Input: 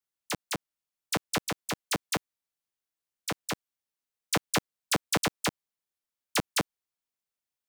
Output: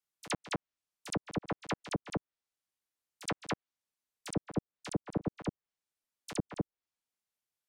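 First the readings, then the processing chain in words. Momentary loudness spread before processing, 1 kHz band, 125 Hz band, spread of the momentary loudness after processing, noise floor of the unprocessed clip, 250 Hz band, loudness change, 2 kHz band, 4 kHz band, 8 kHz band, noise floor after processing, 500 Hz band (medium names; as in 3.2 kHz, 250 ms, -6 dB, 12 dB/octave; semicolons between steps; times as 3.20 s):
9 LU, -8.0 dB, -1.0 dB, 5 LU, under -85 dBFS, -1.5 dB, -7.5 dB, -10.5 dB, -12.5 dB, -13.0 dB, under -85 dBFS, -4.5 dB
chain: pre-echo 70 ms -17 dB; low-pass that closes with the level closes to 390 Hz, closed at -25 dBFS; trim -1 dB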